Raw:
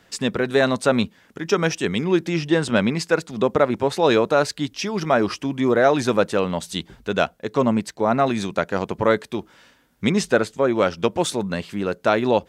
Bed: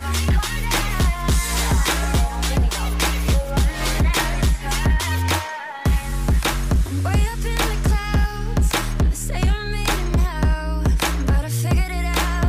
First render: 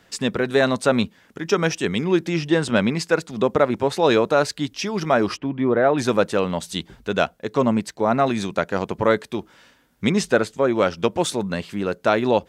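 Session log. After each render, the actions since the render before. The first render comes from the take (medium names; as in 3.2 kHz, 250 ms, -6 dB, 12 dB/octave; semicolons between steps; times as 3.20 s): 5.37–5.98 s: distance through air 400 m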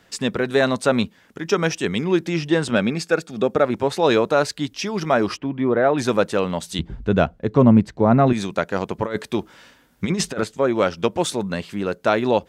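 2.75–3.65 s: comb of notches 1 kHz; 6.79–8.33 s: RIAA curve playback; 9.05–10.44 s: compressor with a negative ratio -21 dBFS, ratio -0.5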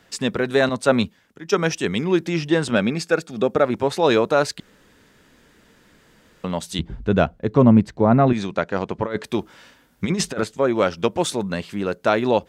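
0.69–1.79 s: three bands expanded up and down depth 70%; 4.60–6.44 s: room tone; 8.06–9.24 s: distance through air 77 m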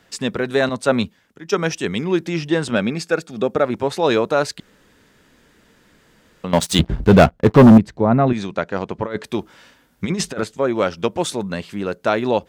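6.53–7.78 s: waveshaping leveller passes 3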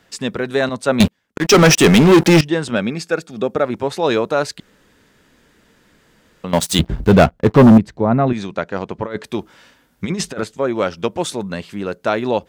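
1.00–2.41 s: waveshaping leveller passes 5; 6.48–7.12 s: treble shelf 8.7 kHz +7 dB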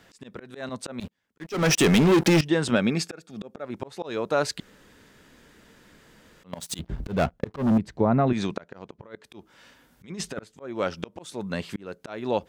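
slow attack 584 ms; compression 6:1, threshold -17 dBFS, peak gain reduction 9.5 dB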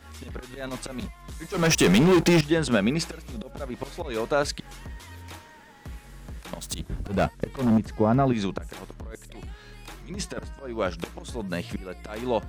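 add bed -22 dB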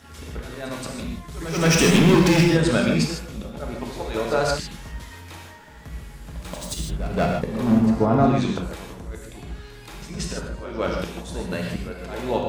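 pre-echo 176 ms -13 dB; gated-style reverb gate 180 ms flat, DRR -0.5 dB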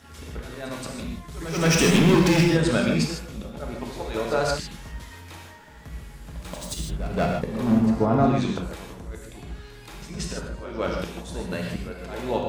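trim -2 dB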